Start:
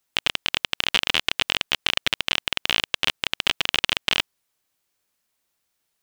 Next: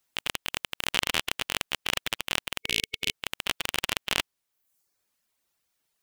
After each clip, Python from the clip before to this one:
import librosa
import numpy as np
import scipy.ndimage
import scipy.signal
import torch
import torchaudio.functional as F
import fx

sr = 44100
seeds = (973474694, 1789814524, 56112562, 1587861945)

y = fx.spec_box(x, sr, start_s=2.6, length_s=0.52, low_hz=440.0, high_hz=2200.0, gain_db=-12)
y = fx.dereverb_blind(y, sr, rt60_s=0.68)
y = fx.transient(y, sr, attack_db=-10, sustain_db=6)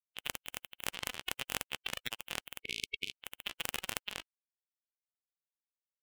y = fx.bin_expand(x, sr, power=3.0)
y = fx.over_compress(y, sr, threshold_db=-41.0, ratio=-1.0)
y = y * librosa.db_to_amplitude(1.5)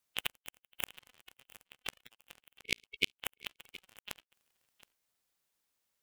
y = fx.transient(x, sr, attack_db=-6, sustain_db=2)
y = fx.gate_flip(y, sr, shuts_db=-24.0, range_db=-35)
y = y + 10.0 ** (-18.5 / 20.0) * np.pad(y, (int(720 * sr / 1000.0), 0))[:len(y)]
y = y * librosa.db_to_amplitude(14.0)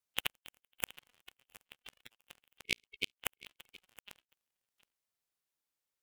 y = fx.level_steps(x, sr, step_db=19)
y = fx.vibrato(y, sr, rate_hz=7.0, depth_cents=38.0)
y = y * librosa.db_to_amplitude(5.0)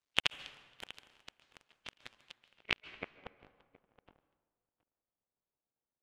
y = fx.cycle_switch(x, sr, every=2, mode='muted')
y = fx.filter_sweep_lowpass(y, sr, from_hz=5400.0, to_hz=800.0, start_s=2.31, end_s=3.29, q=0.75)
y = fx.rev_plate(y, sr, seeds[0], rt60_s=1.5, hf_ratio=0.6, predelay_ms=120, drr_db=15.5)
y = y * librosa.db_to_amplitude(6.5)